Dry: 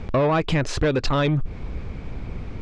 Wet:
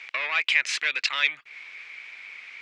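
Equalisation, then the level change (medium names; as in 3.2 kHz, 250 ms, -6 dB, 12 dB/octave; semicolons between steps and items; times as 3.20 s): resonant high-pass 2.2 kHz, resonance Q 3.9; +1.0 dB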